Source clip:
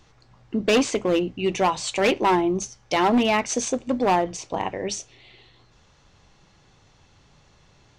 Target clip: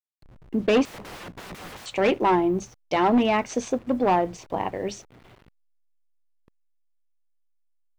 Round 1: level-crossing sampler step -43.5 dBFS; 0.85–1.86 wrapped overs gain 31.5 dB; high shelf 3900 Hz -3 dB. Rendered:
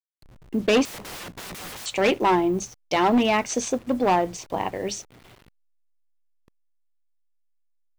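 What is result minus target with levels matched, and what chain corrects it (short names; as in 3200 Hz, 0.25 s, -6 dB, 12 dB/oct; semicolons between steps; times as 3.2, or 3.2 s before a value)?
8000 Hz band +8.0 dB
level-crossing sampler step -43.5 dBFS; 0.85–1.86 wrapped overs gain 31.5 dB; high shelf 3900 Hz -14.5 dB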